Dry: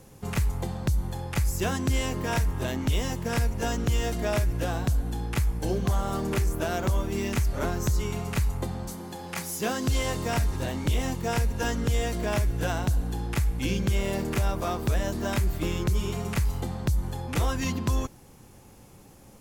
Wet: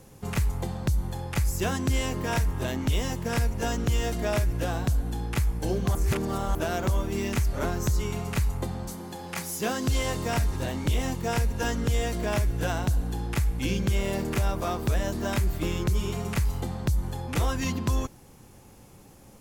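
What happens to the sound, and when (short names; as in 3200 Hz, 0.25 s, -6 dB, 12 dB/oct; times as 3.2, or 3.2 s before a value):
5.95–6.55 reverse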